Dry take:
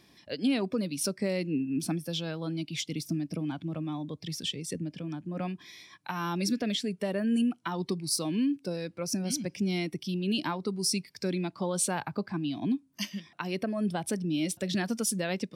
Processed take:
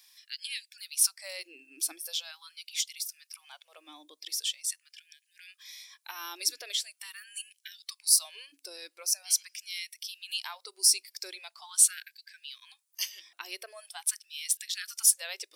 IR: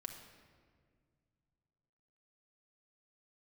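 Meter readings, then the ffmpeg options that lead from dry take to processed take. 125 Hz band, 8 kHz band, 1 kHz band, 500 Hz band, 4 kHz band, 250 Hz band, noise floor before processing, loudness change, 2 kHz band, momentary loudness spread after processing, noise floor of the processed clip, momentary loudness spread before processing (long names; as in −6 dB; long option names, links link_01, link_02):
below −40 dB, +8.5 dB, −11.0 dB, −19.5 dB, +3.5 dB, below −30 dB, −62 dBFS, +3.0 dB, −3.0 dB, 22 LU, −76 dBFS, 8 LU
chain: -af "aderivative,afftfilt=real='re*gte(b*sr/1024,270*pow(1600/270,0.5+0.5*sin(2*PI*0.43*pts/sr)))':imag='im*gte(b*sr/1024,270*pow(1600/270,0.5+0.5*sin(2*PI*0.43*pts/sr)))':win_size=1024:overlap=0.75,volume=8dB"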